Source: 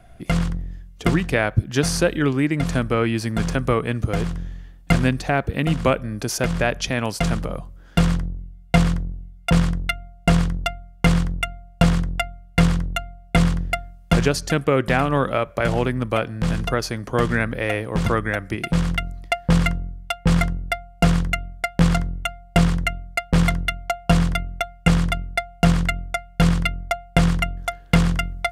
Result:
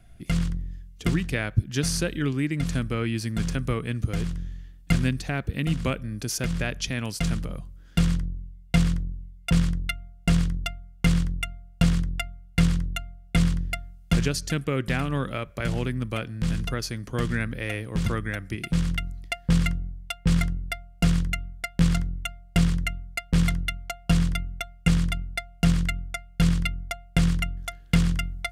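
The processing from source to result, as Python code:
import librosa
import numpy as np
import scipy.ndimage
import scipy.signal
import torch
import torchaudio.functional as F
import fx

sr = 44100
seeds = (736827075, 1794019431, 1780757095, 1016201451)

y = fx.peak_eq(x, sr, hz=760.0, db=-11.5, octaves=2.1)
y = y * librosa.db_to_amplitude(-2.5)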